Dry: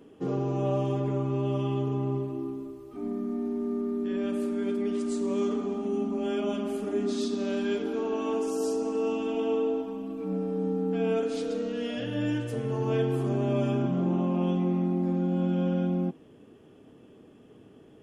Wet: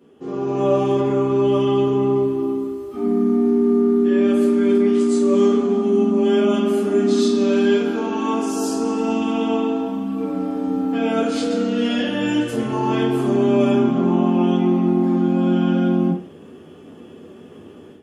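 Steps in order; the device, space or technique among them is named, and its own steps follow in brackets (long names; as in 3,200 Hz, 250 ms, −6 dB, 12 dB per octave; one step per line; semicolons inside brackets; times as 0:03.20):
far laptop microphone (convolution reverb RT60 0.40 s, pre-delay 6 ms, DRR −3 dB; high-pass filter 100 Hz; automatic gain control gain up to 11.5 dB)
level −3.5 dB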